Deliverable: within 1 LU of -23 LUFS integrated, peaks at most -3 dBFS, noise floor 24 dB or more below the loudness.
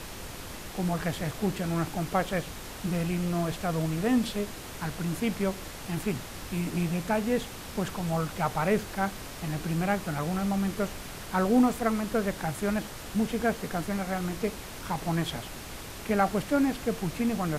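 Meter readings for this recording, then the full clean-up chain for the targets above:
noise floor -41 dBFS; noise floor target -54 dBFS; loudness -30.0 LUFS; peak -11.5 dBFS; loudness target -23.0 LUFS
-> noise print and reduce 13 dB; gain +7 dB

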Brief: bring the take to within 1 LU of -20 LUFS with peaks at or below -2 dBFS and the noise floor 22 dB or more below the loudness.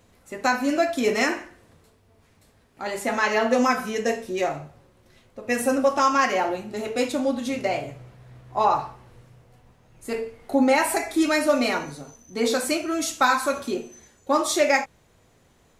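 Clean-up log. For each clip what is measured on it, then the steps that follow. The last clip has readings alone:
loudness -23.5 LUFS; peak -7.5 dBFS; loudness target -20.0 LUFS
-> gain +3.5 dB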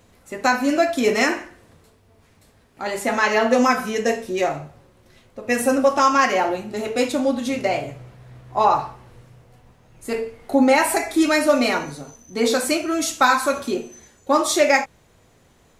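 loudness -20.0 LUFS; peak -4.0 dBFS; noise floor -56 dBFS

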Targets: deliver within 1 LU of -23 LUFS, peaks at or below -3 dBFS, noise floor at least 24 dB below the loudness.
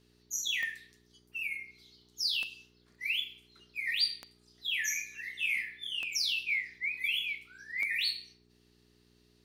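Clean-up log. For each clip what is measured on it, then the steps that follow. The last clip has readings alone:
clicks 5; hum 60 Hz; harmonics up to 420 Hz; hum level -64 dBFS; loudness -32.5 LUFS; peak -18.0 dBFS; loudness target -23.0 LUFS
-> de-click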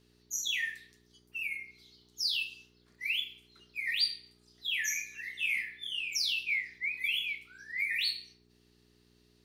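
clicks 0; hum 60 Hz; harmonics up to 420 Hz; hum level -64 dBFS
-> de-hum 60 Hz, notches 7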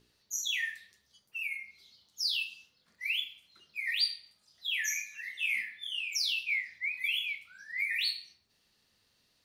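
hum none; loudness -32.5 LUFS; peak -18.0 dBFS; loudness target -23.0 LUFS
-> gain +9.5 dB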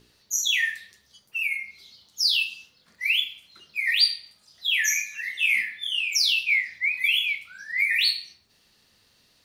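loudness -23.0 LUFS; peak -8.5 dBFS; noise floor -63 dBFS

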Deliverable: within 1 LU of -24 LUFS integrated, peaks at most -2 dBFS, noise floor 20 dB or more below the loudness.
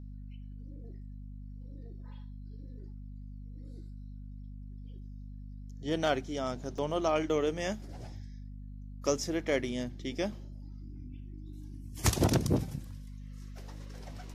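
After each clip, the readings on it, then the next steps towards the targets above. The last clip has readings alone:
dropouts 1; longest dropout 3.4 ms; hum 50 Hz; harmonics up to 250 Hz; hum level -42 dBFS; loudness -32.5 LUFS; peak -12.5 dBFS; loudness target -24.0 LUFS
-> interpolate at 6.78, 3.4 ms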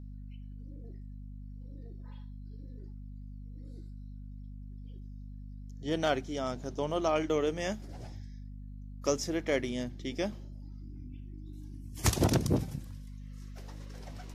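dropouts 0; hum 50 Hz; harmonics up to 250 Hz; hum level -42 dBFS
-> notches 50/100/150/200/250 Hz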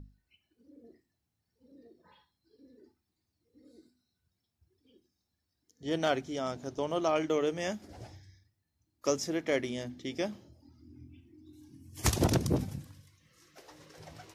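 hum none; loudness -32.5 LUFS; peak -12.5 dBFS; loudness target -24.0 LUFS
-> gain +8.5 dB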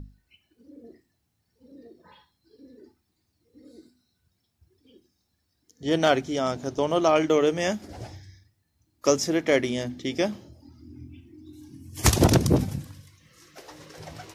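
loudness -24.0 LUFS; peak -4.0 dBFS; noise floor -75 dBFS

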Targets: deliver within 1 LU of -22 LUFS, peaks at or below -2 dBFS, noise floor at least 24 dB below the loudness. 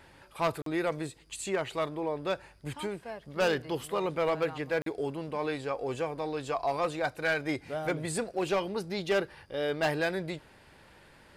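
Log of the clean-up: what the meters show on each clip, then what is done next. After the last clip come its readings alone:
clipped 0.8%; flat tops at -21.5 dBFS; dropouts 2; longest dropout 43 ms; loudness -32.5 LUFS; peak -21.5 dBFS; loudness target -22.0 LUFS
-> clip repair -21.5 dBFS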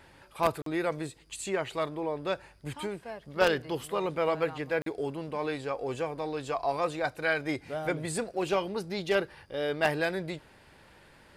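clipped 0.0%; dropouts 2; longest dropout 43 ms
-> interpolate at 0.62/4.82, 43 ms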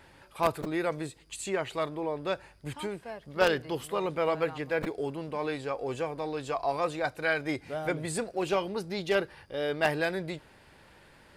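dropouts 0; loudness -31.5 LUFS; peak -12.5 dBFS; loudness target -22.0 LUFS
-> gain +9.5 dB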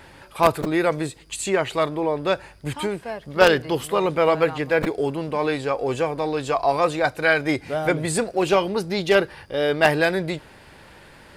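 loudness -22.0 LUFS; peak -3.0 dBFS; noise floor -48 dBFS

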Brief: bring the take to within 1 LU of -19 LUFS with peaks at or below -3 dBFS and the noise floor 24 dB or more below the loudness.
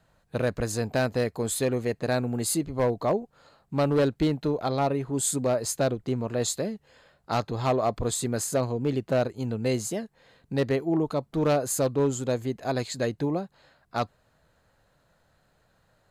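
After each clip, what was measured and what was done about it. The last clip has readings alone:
clipped 0.7%; flat tops at -17.5 dBFS; loudness -27.5 LUFS; peak -17.5 dBFS; loudness target -19.0 LUFS
-> clip repair -17.5 dBFS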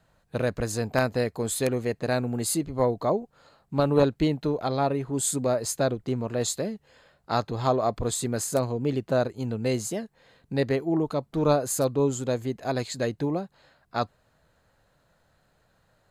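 clipped 0.0%; loudness -27.0 LUFS; peak -8.5 dBFS; loudness target -19.0 LUFS
-> gain +8 dB; limiter -3 dBFS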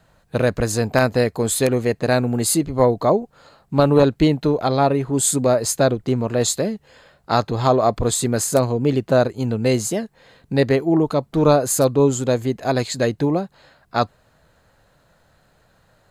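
loudness -19.5 LUFS; peak -3.0 dBFS; noise floor -60 dBFS

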